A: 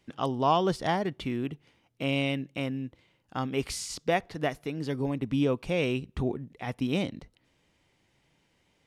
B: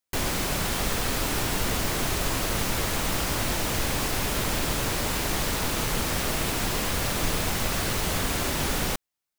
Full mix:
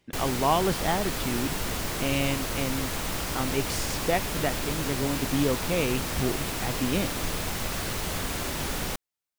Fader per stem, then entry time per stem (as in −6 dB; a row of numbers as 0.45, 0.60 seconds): +0.5, −4.0 decibels; 0.00, 0.00 seconds